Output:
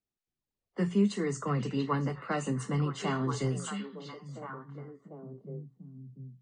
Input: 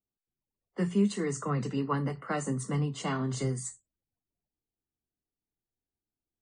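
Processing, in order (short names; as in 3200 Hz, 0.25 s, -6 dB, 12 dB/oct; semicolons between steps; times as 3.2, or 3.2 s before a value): LPF 6900 Hz 12 dB/oct; delay with a stepping band-pass 0.688 s, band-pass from 3100 Hz, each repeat -1.4 oct, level -3 dB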